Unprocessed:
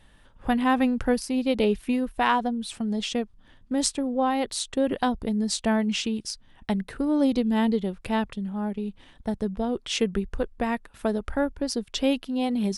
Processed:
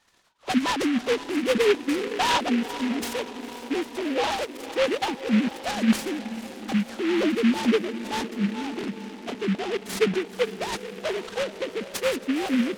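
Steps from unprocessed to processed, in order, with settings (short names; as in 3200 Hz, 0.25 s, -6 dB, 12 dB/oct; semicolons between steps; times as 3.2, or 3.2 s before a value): sine-wave speech; diffused feedback echo 0.49 s, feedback 67%, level -13 dB; noise-modulated delay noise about 2000 Hz, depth 0.12 ms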